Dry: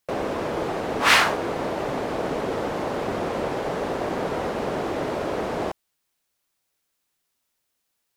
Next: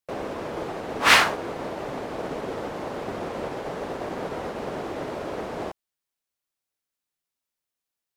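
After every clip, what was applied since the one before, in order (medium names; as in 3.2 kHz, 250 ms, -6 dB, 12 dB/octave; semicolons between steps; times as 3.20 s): upward expansion 1.5:1, over -39 dBFS; trim +1.5 dB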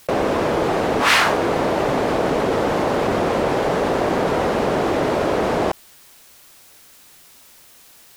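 level flattener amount 70%; trim -1 dB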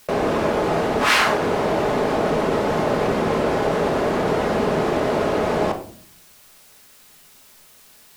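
simulated room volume 630 m³, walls furnished, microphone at 1.4 m; trim -3 dB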